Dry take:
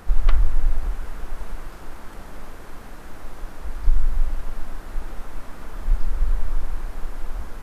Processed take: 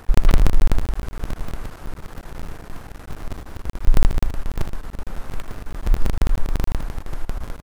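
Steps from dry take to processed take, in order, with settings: cycle switcher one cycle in 3, muted; delay 79 ms -12.5 dB; trim +2 dB

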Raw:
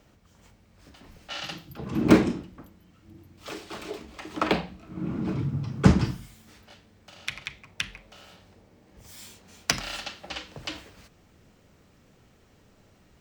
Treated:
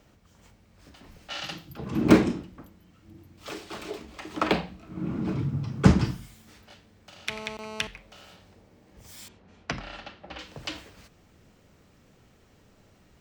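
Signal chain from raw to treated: 7.29–7.87 s: mobile phone buzz -39 dBFS; 9.28–10.39 s: tape spacing loss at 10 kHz 29 dB

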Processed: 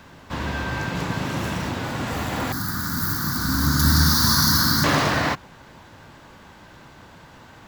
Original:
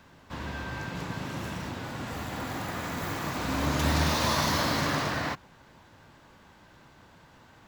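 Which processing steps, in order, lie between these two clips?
2.52–4.84 s: FFT filter 240 Hz 0 dB, 580 Hz -22 dB, 1.5 kHz +2 dB, 2.6 kHz -25 dB, 4.6 kHz +6 dB, 7.7 kHz -1 dB, 12 kHz +10 dB; trim +9 dB

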